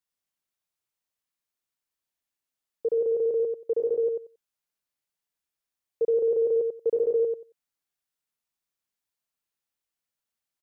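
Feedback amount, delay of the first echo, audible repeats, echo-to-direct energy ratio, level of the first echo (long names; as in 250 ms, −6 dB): 16%, 91 ms, 2, −5.0 dB, −5.0 dB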